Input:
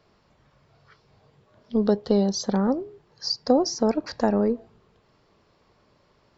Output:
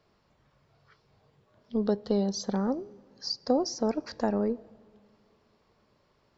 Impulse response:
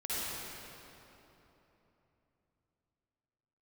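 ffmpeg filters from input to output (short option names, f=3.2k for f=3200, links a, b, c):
-filter_complex "[0:a]asplit=2[a][b];[1:a]atrim=start_sample=2205,asetrate=61740,aresample=44100[c];[b][c]afir=irnorm=-1:irlink=0,volume=-28dB[d];[a][d]amix=inputs=2:normalize=0,volume=-6dB"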